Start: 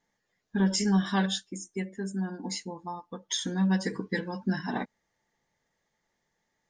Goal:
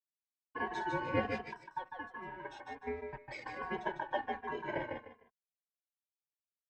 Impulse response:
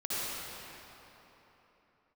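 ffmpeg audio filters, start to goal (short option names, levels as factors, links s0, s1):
-filter_complex "[0:a]highpass=f=300:w=0.5412,highpass=f=300:w=1.3066,aeval=exprs='sgn(val(0))*max(abs(val(0))-0.00398,0)':c=same,aeval=exprs='val(0)*sin(2*PI*1300*n/s)':c=same,lowpass=1200,asplit=2[s0][s1];[s1]aecho=0:1:151|302|453:0.562|0.141|0.0351[s2];[s0][s2]amix=inputs=2:normalize=0,asplit=2[s3][s4];[s4]adelay=2.6,afreqshift=-1.3[s5];[s3][s5]amix=inputs=2:normalize=1,volume=2.24"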